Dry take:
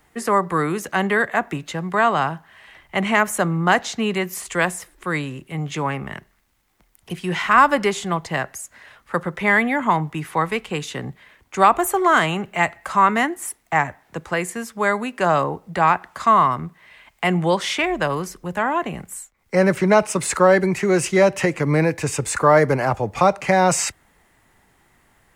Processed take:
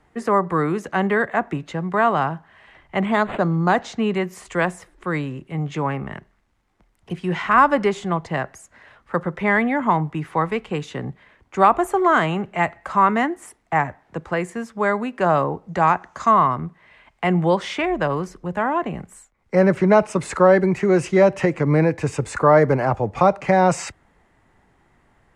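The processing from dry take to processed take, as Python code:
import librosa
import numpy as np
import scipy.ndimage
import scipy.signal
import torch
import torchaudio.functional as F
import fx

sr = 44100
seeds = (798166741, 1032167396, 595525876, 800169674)

y = fx.resample_linear(x, sr, factor=8, at=(3.05, 3.76))
y = fx.peak_eq(y, sr, hz=6400.0, db=12.5, octaves=0.42, at=(15.68, 16.31))
y = scipy.signal.sosfilt(scipy.signal.butter(2, 8600.0, 'lowpass', fs=sr, output='sos'), y)
y = fx.high_shelf(y, sr, hz=2100.0, db=-11.0)
y = F.gain(torch.from_numpy(y), 1.5).numpy()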